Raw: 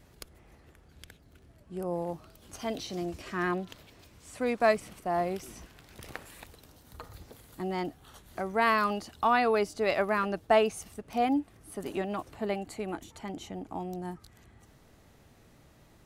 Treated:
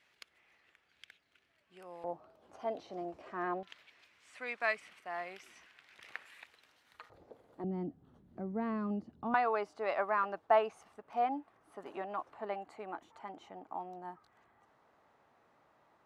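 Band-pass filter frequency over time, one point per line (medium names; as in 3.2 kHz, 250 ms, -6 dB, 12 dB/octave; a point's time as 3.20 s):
band-pass filter, Q 1.5
2.4 kHz
from 2.04 s 710 Hz
from 3.63 s 2.1 kHz
from 7.10 s 560 Hz
from 7.64 s 210 Hz
from 9.34 s 1 kHz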